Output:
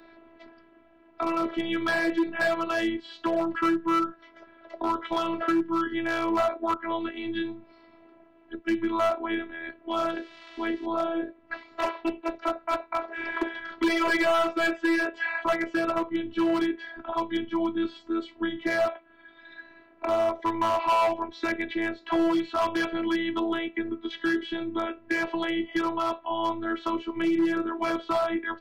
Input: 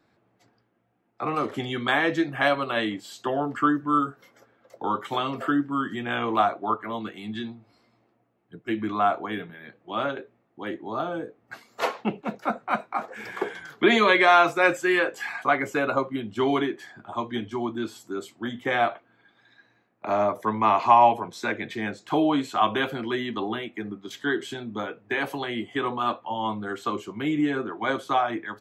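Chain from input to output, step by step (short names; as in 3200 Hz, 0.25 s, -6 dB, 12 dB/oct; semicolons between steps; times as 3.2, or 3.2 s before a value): 9.91–10.86 switching spikes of -32.5 dBFS; LPF 3700 Hz 24 dB/oct; in parallel at -3 dB: compressor 4:1, threshold -32 dBFS, peak gain reduction 17 dB; on the sum: robotiser 331 Hz; hard clip -18 dBFS, distortion -10 dB; three-band squash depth 40%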